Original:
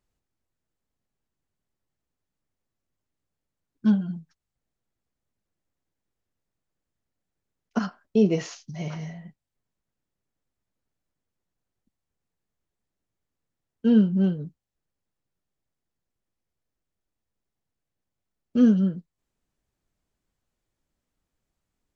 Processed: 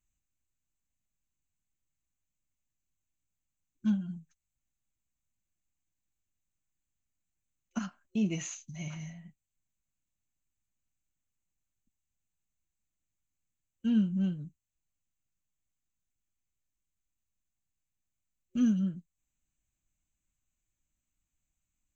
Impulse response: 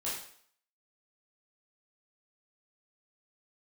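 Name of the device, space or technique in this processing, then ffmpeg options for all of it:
smiley-face EQ: -af "superequalizer=7b=0.355:12b=1.78:14b=0.447:15b=2.82:16b=0.282,lowshelf=f=81:g=7,equalizer=f=600:t=o:w=1.9:g=-6.5,highshelf=f=5.2k:g=4,volume=-7.5dB"

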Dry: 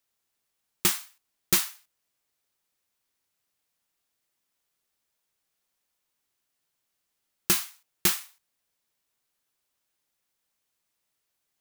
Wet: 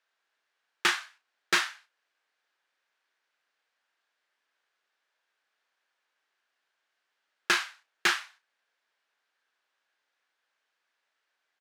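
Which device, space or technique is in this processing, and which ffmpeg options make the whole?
megaphone: -filter_complex "[0:a]highpass=510,lowpass=3.5k,equalizer=f=1.6k:t=o:w=0.39:g=8,asoftclip=type=hard:threshold=-20.5dB,asplit=2[a][b];[b]adelay=34,volume=-9.5dB[c];[a][c]amix=inputs=2:normalize=0,volume=5dB"

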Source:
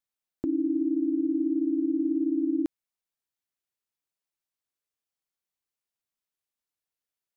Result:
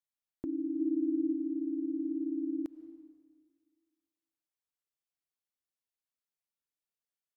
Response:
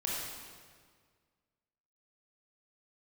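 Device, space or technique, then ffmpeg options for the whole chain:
ducked reverb: -filter_complex "[0:a]asplit=3[a][b][c];[a]afade=t=out:st=0.78:d=0.02[d];[b]aecho=1:1:6.3:0.77,afade=t=in:st=0.78:d=0.02,afade=t=out:st=1.33:d=0.02[e];[c]afade=t=in:st=1.33:d=0.02[f];[d][e][f]amix=inputs=3:normalize=0,asplit=3[g][h][i];[1:a]atrim=start_sample=2205[j];[h][j]afir=irnorm=-1:irlink=0[k];[i]apad=whole_len=324838[l];[k][l]sidechaincompress=threshold=-39dB:ratio=8:attack=16:release=142,volume=-15dB[m];[g][m]amix=inputs=2:normalize=0,volume=-8.5dB"

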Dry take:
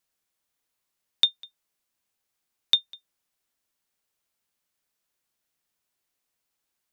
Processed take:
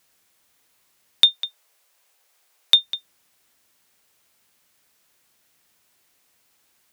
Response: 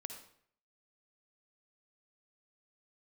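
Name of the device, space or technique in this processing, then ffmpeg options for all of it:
mastering chain: -filter_complex "[0:a]asettb=1/sr,asplit=3[a][b][c];[a]atrim=end=1.354[d];[b]atrim=start=1.35:end=2.76,asetpts=PTS-STARTPTS,afade=t=in:d=0.004:c=qsin,afade=t=out:st=1.406:d=0.004:c=qsin,lowshelf=f=350:t=q:w=1.5:g=-12[e];[c]atrim=start=2.756[f];[d][e]acrossfade=d=0.004:c1=hsin:c2=qsin[g];[g][f]acrossfade=d=0.004:c1=qsin:c2=hsin,highpass=52,equalizer=f=2.1k:t=o:w=0.77:g=1.5,acompressor=threshold=-21dB:ratio=2,asoftclip=type=tanh:threshold=-9.5dB,alimiter=level_in=17dB:limit=-1dB:release=50:level=0:latency=1,volume=-1dB"

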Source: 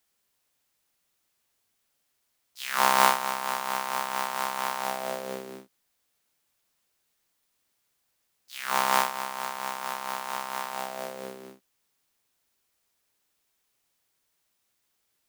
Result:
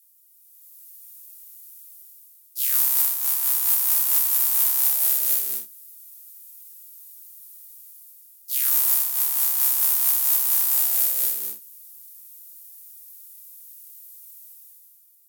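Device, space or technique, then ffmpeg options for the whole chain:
FM broadcast chain: -filter_complex "[0:a]highpass=54,dynaudnorm=f=100:g=13:m=13dB,acrossover=split=1200|3500[a][b][c];[a]acompressor=threshold=-34dB:ratio=4[d];[b]acompressor=threshold=-31dB:ratio=4[e];[c]acompressor=threshold=-32dB:ratio=4[f];[d][e][f]amix=inputs=3:normalize=0,aemphasis=mode=production:type=75fm,alimiter=limit=-3dB:level=0:latency=1:release=202,asoftclip=type=hard:threshold=-6.5dB,lowpass=f=15k:w=0.5412,lowpass=f=15k:w=1.3066,aemphasis=mode=production:type=75fm,volume=-12dB"

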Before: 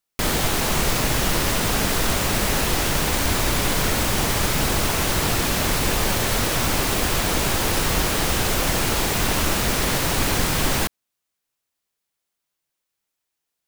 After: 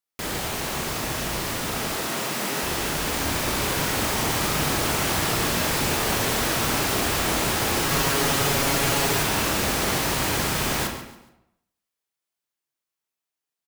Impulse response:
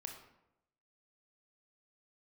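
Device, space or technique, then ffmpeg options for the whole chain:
far laptop microphone: -filter_complex "[0:a]asettb=1/sr,asplit=3[a][b][c];[a]atrim=end=1.934[d];[b]atrim=start=1.93:end=2.63,asetpts=PTS-STARTPTS,afade=t=in:d=0.004:c=qsin,afade=t=out:st=0.696:d=0.004:c=qsin,highpass=f=150:w=0.5412,highpass=f=150:w=1.3066[e];[c]atrim=start=2.626[f];[d][e]acrossfade=d=0.004:c1=hsin:c2=qsin[g];[g][f]acrossfade=d=0.004:c1=qsin:c2=hsin[h];[1:a]atrim=start_sample=2205[i];[h][i]afir=irnorm=-1:irlink=0,highpass=f=110:p=1,dynaudnorm=f=580:g=11:m=5dB,asettb=1/sr,asplit=3[j][k][l];[j]atrim=end=7.904[m];[k]atrim=start=7.9:end=9.23,asetpts=PTS-STARTPTS,afade=t=in:d=0.004:c=qsin,afade=t=out:st=1.326:d=0.004:c=qsin,aecho=1:1:7.2:0.65,atrim=end_sample=58653[n];[l]atrim=start=9.226[o];[m][n]acrossfade=d=0.004:c1=hsin:c2=qsin[p];[p][o]acrossfade=d=0.004:c1=qsin:c2=hsin,aecho=1:1:140|280|420:0.211|0.0676|0.0216,volume=-2.5dB"

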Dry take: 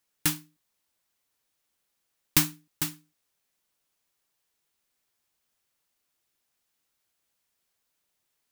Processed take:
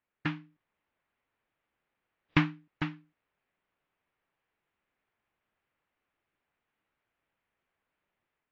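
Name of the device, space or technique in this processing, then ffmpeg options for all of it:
action camera in a waterproof case: -af "lowpass=f=2.5k:w=0.5412,lowpass=f=2.5k:w=1.3066,dynaudnorm=f=160:g=5:m=5dB,volume=-2dB" -ar 16000 -c:a aac -b:a 64k

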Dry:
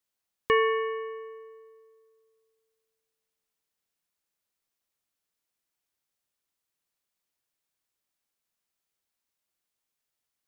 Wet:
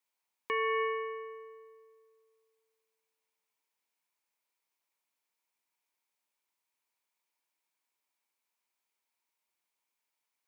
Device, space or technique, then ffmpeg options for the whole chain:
laptop speaker: -af "highpass=250,equalizer=f=940:t=o:w=0.31:g=11,equalizer=f=2.3k:t=o:w=0.32:g=8,alimiter=limit=-20dB:level=0:latency=1,volume=-2.5dB"

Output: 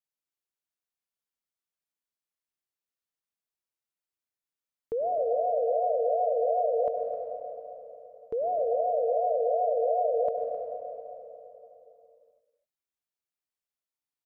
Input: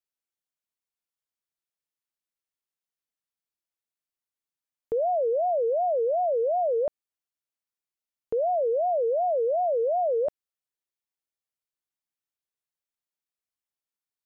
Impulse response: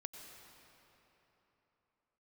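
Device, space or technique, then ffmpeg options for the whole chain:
cave: -filter_complex "[0:a]aecho=1:1:261:0.224[a];[1:a]atrim=start_sample=2205[b];[a][b]afir=irnorm=-1:irlink=0,volume=1dB"

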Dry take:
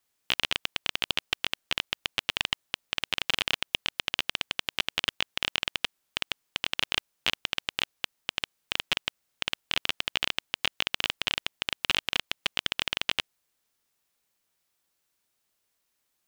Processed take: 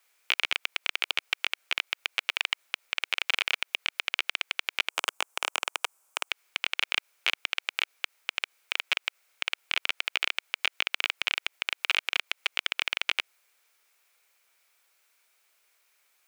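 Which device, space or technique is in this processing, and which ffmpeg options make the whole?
laptop speaker: -filter_complex "[0:a]asplit=3[a][b][c];[a]afade=t=out:st=4.88:d=0.02[d];[b]equalizer=f=125:t=o:w=1:g=-11,equalizer=f=1k:t=o:w=1:g=6,equalizer=f=2k:t=o:w=1:g=-10,equalizer=f=4k:t=o:w=1:g=-9,equalizer=f=8k:t=o:w=1:g=8,afade=t=in:st=4.88:d=0.02,afade=t=out:st=6.28:d=0.02[e];[c]afade=t=in:st=6.28:d=0.02[f];[d][e][f]amix=inputs=3:normalize=0,highpass=f=420:w=0.5412,highpass=f=420:w=1.3066,equalizer=f=1.4k:t=o:w=0.45:g=5,equalizer=f=2.3k:t=o:w=0.36:g=9,alimiter=limit=-15dB:level=0:latency=1:release=78,volume=7.5dB"

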